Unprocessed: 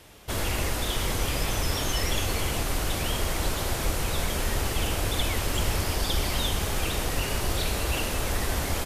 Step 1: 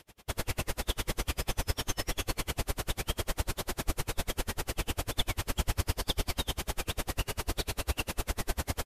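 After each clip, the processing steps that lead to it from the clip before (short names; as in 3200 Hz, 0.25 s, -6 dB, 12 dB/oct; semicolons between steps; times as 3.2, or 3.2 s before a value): dB-linear tremolo 10 Hz, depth 37 dB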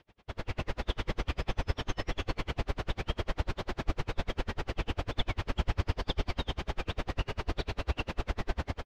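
air absorption 220 m; AGC gain up to 6 dB; gain -5 dB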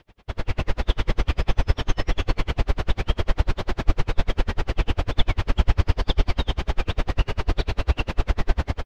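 low shelf 67 Hz +8 dB; gain +7 dB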